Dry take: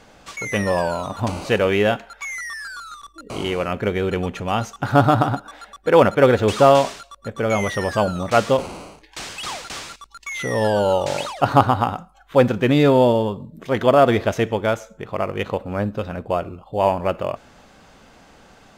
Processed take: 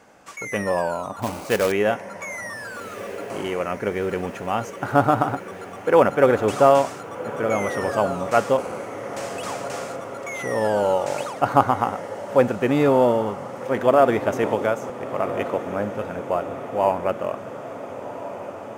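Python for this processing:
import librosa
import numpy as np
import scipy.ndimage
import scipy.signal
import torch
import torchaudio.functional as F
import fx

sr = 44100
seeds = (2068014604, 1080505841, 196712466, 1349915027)

y = fx.highpass(x, sr, hz=250.0, slope=6)
y = fx.peak_eq(y, sr, hz=3800.0, db=-10.5, octaves=0.98)
y = fx.quant_companded(y, sr, bits=4, at=(1.22, 1.72))
y = fx.echo_diffused(y, sr, ms=1435, feedback_pct=67, wet_db=-12.5)
y = fx.band_squash(y, sr, depth_pct=70, at=(14.43, 14.9))
y = F.gain(torch.from_numpy(y), -1.0).numpy()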